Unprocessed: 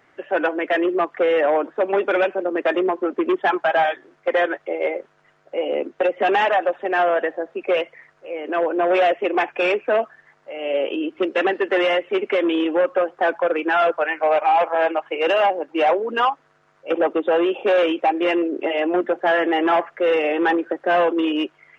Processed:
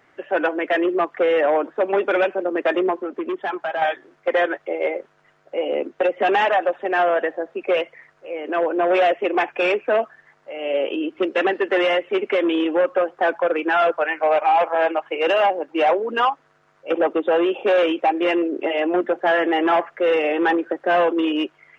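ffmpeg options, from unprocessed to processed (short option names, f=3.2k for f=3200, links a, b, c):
-filter_complex "[0:a]asettb=1/sr,asplit=3[a][b][c];[a]atrim=end=2.974[d];[b]atrim=start=2.97:end=3.82,asetpts=PTS-STARTPTS,afade=t=in:d=0.004:c=qsin,afade=t=out:st=0.846:d=0.004:c=qsin,acompressor=threshold=-33dB:ratio=1.5:attack=3.2:release=140:knee=1:detection=peak[e];[c]atrim=start=3.816[f];[d][e]acrossfade=d=0.004:c1=hsin:c2=qsin[g];[g][f]acrossfade=d=0.004:c1=qsin:c2=hsin"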